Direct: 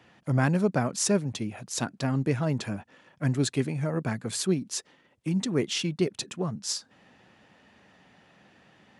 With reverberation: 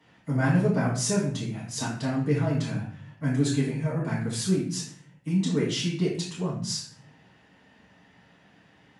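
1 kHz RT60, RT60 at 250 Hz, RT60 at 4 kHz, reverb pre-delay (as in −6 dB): 0.50 s, 0.75 s, 0.45 s, 4 ms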